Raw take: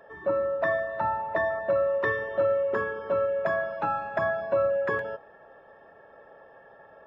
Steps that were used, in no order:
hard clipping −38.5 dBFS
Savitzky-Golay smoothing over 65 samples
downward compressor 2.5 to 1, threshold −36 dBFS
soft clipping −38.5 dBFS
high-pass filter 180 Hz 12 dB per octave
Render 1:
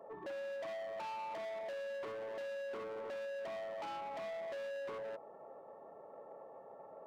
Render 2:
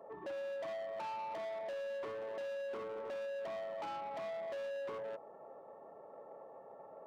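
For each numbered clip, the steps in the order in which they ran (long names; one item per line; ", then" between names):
Savitzky-Golay smoothing, then downward compressor, then hard clipping, then high-pass filter, then soft clipping
Savitzky-Golay smoothing, then downward compressor, then soft clipping, then high-pass filter, then hard clipping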